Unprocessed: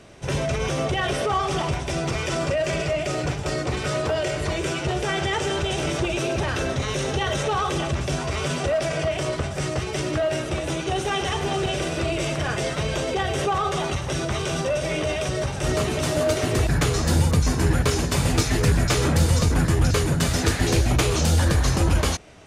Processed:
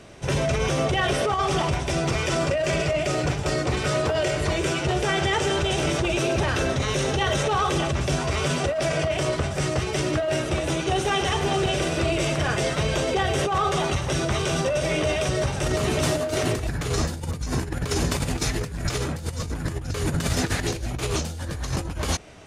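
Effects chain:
compressor whose output falls as the input rises −23 dBFS, ratio −0.5

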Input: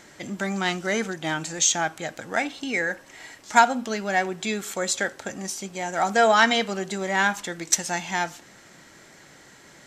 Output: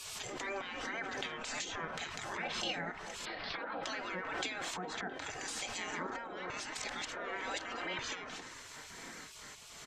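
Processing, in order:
0:01.41–0:01.91: transient designer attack −5 dB, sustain +8 dB
0:03.25–0:03.83: Butterworth low-pass 4,700 Hz 72 dB per octave
0:04.61–0:05.14: parametric band 450 Hz +14 dB 2.3 octaves
downward compressor 6 to 1, threshold −21 dBFS, peak gain reduction 11 dB
treble cut that deepens with the level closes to 1,000 Hz, closed at −21 dBFS
echo through a band-pass that steps 645 ms, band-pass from 290 Hz, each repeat 0.7 octaves, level −8 dB
brickwall limiter −22 dBFS, peak gain reduction 11 dB
comb filter 3.9 ms, depth 49%
0:06.50–0:07.99: reverse
gate on every frequency bin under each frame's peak −15 dB weak
background raised ahead of every attack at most 27 dB per second
level +1 dB

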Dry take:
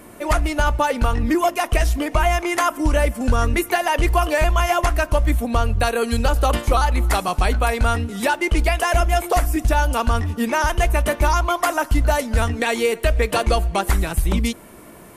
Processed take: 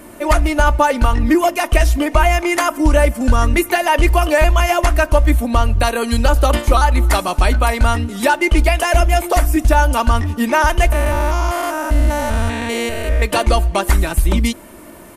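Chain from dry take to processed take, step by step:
0:10.92–0:13.22: spectrum averaged block by block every 200 ms
comb filter 3.3 ms, depth 38%
level +3.5 dB

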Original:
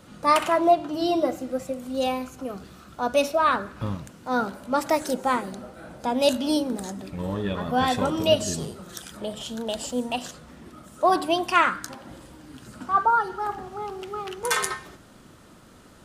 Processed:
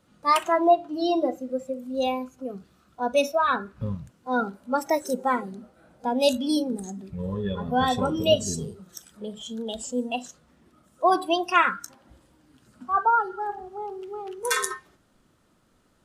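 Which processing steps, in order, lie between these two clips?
noise reduction from a noise print of the clip's start 14 dB

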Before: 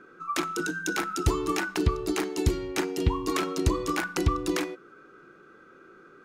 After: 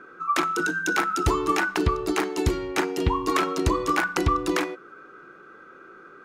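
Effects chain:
parametric band 1,100 Hz +7.5 dB 2.6 octaves

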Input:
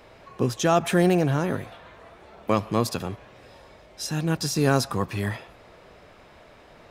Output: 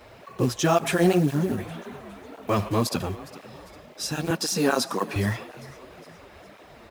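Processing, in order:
0:01.18–0:01.58: gain on a spectral selection 420–9,700 Hz −12 dB
0:01.66–0:02.69: transient designer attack −2 dB, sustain +5 dB
0:04.30–0:05.16: high-pass filter 200 Hz 24 dB per octave
in parallel at −3 dB: brickwall limiter −16 dBFS, peak gain reduction 8.5 dB
on the sum: log-companded quantiser 6 bits
on a send: echo with shifted repeats 408 ms, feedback 51%, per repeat +31 Hz, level −19 dB
on the sum: through-zero flanger with one copy inverted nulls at 1.9 Hz, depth 7.8 ms

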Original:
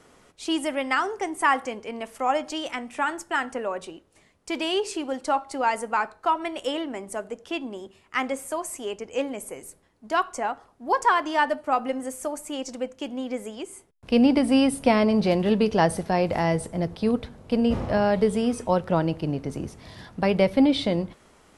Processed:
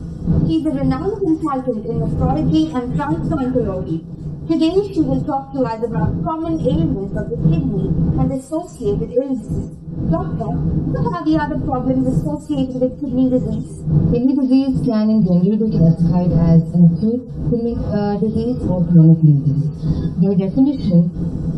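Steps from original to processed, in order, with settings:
harmonic-percussive split with one part muted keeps harmonic
wind on the microphone 250 Hz −35 dBFS
bass and treble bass +9 dB, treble +7 dB
0:02.29–0:04.92: leveller curve on the samples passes 1
downward compressor 4 to 1, threshold −25 dBFS, peak gain reduction 14 dB
convolution reverb RT60 0.10 s, pre-delay 3 ms, DRR −3.5 dB
level −2.5 dB

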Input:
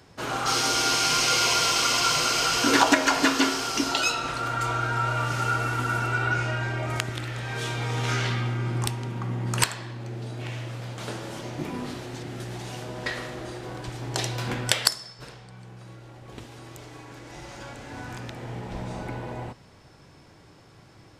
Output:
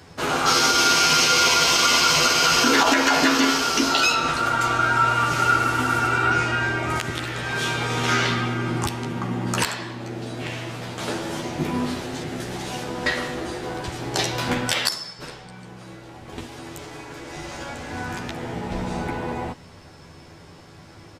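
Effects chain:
double-tracking delay 12 ms −3.5 dB
brickwall limiter −13 dBFS, peak gain reduction 11 dB
dynamic equaliser 8,800 Hz, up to −5 dB, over −43 dBFS, Q 2
level +5.5 dB

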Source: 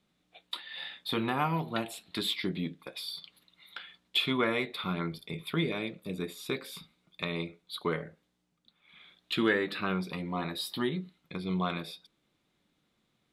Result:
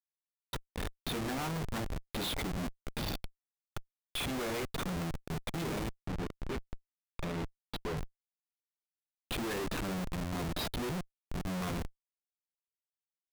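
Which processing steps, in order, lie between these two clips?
comparator with hysteresis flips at −34.5 dBFS
0:06.05–0:07.97: low-pass filter 3,800 Hz 6 dB per octave

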